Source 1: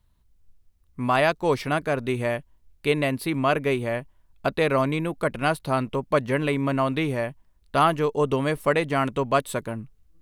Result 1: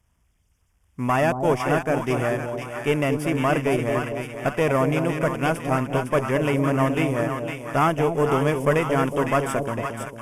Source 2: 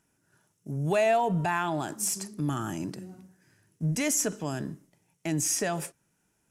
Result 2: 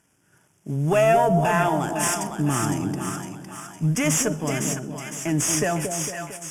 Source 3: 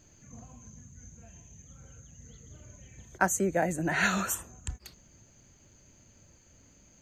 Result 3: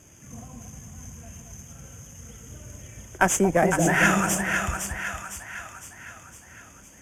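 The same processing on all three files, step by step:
CVSD 64 kbps; HPF 42 Hz; tube stage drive 15 dB, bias 0.5; Butterworth band-stop 4100 Hz, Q 2.5; split-band echo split 800 Hz, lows 0.227 s, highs 0.508 s, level -5.5 dB; match loudness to -23 LUFS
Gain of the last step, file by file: +3.5, +8.5, +9.0 dB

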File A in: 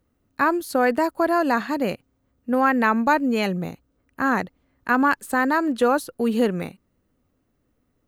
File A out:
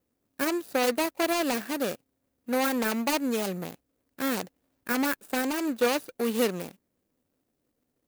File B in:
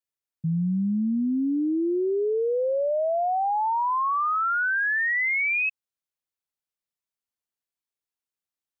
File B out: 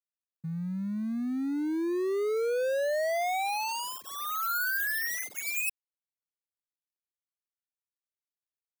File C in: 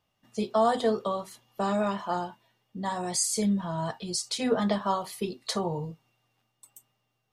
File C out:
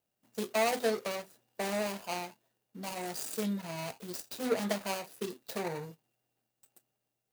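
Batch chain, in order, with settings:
median filter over 41 samples; RIAA curve recording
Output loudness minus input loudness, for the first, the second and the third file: -6.5, -6.0, -6.5 LU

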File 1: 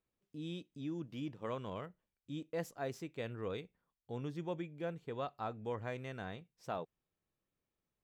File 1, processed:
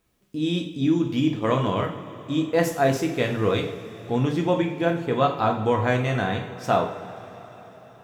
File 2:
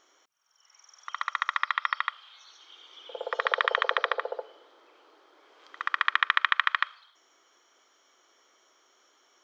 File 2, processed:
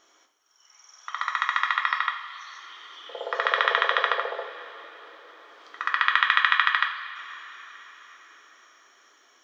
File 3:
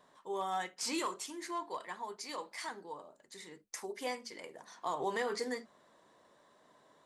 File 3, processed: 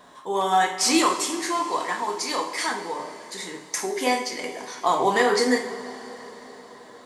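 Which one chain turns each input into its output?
notch 520 Hz, Q 16; two-slope reverb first 0.48 s, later 4.9 s, from -18 dB, DRR 2 dB; match loudness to -24 LUFS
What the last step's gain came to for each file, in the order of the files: +17.5, +1.5, +14.0 dB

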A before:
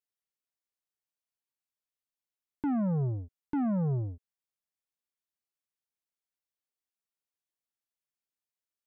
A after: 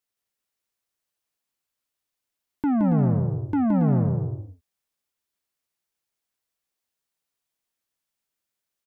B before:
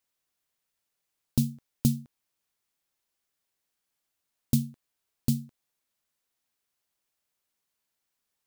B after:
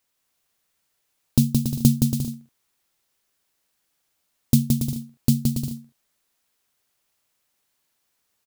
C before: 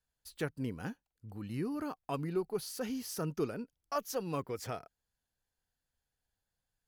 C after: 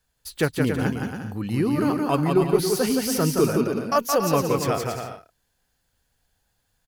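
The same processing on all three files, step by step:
on a send: bouncing-ball echo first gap 0.17 s, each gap 0.65×, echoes 5; on the sum: match loudness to -23 LUFS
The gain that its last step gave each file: +7.0, +7.0, +13.5 dB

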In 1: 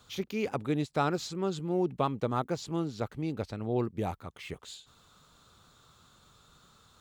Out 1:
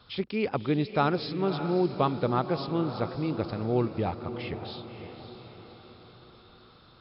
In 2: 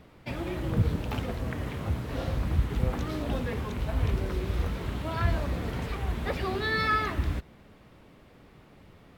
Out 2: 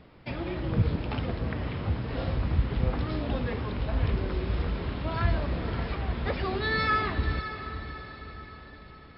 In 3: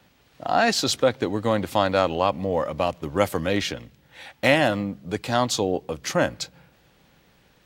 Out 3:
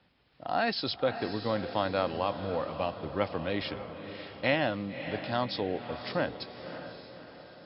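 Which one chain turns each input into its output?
brick-wall FIR low-pass 5400 Hz; on a send: diffused feedback echo 0.574 s, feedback 50%, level -10 dB; on the sum: normalise peaks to -12 dBFS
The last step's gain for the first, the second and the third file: +3.5, 0.0, -8.5 dB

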